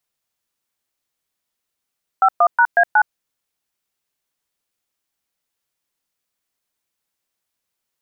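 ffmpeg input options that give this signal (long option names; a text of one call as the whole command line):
ffmpeg -f lavfi -i "aevalsrc='0.251*clip(min(mod(t,0.183),0.066-mod(t,0.183))/0.002,0,1)*(eq(floor(t/0.183),0)*(sin(2*PI*770*mod(t,0.183))+sin(2*PI*1336*mod(t,0.183)))+eq(floor(t/0.183),1)*(sin(2*PI*697*mod(t,0.183))+sin(2*PI*1209*mod(t,0.183)))+eq(floor(t/0.183),2)*(sin(2*PI*941*mod(t,0.183))+sin(2*PI*1477*mod(t,0.183)))+eq(floor(t/0.183),3)*(sin(2*PI*697*mod(t,0.183))+sin(2*PI*1633*mod(t,0.183)))+eq(floor(t/0.183),4)*(sin(2*PI*852*mod(t,0.183))+sin(2*PI*1477*mod(t,0.183))))':duration=0.915:sample_rate=44100" out.wav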